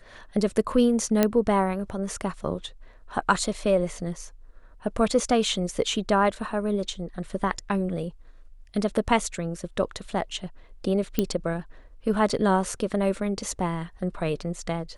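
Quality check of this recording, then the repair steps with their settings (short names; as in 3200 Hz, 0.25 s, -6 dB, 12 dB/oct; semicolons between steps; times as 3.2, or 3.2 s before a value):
1.23 pop -6 dBFS
11.19 pop -9 dBFS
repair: de-click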